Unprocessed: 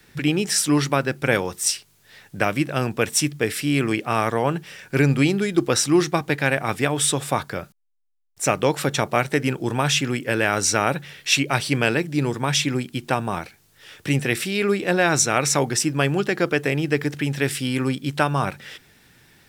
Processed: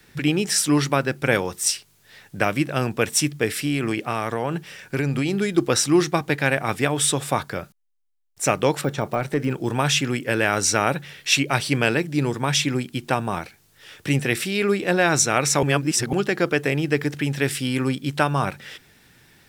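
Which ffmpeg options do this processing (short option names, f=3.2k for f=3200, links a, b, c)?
-filter_complex "[0:a]asettb=1/sr,asplit=3[a][b][c];[a]atrim=end=3.544[d];[b]atrim=start=3.54:end=5.38,asetpts=PTS-STARTPTS,afade=t=in:d=0.004:c=qsin,afade=t=out:st=1.836:d=0.004:c=qsin,acompressor=threshold=-18dB:ratio=6:attack=3.2:release=140:knee=1:detection=peak[e];[c]atrim=start=5.376[f];[d][e]acrossfade=d=0.004:c1=hsin:c2=qsin[g];[g][f]acrossfade=d=0.004:c1=qsin:c2=hsin,asettb=1/sr,asplit=3[h][i][j];[h]atrim=end=8.814[k];[i]atrim=start=8.81:end=9.76,asetpts=PTS-STARTPTS,afade=t=in:d=0.004:c=qsin,afade=t=out:st=0.946:d=0.004:c=qsin,deesser=0.95[l];[j]atrim=start=9.756[m];[k][l]acrossfade=d=0.004:c1=hsin:c2=qsin[n];[n][m]acrossfade=d=0.004:c1=qsin:c2=hsin,asplit=3[o][p][q];[o]atrim=end=15.632[r];[p]atrim=start=15.628:end=16.132,asetpts=PTS-STARTPTS,areverse[s];[q]atrim=start=16.128[t];[r][s]acrossfade=d=0.004:c1=hsin:c2=hsin[u];[u][t]acrossfade=d=0.004:c1=hsin:c2=hsin"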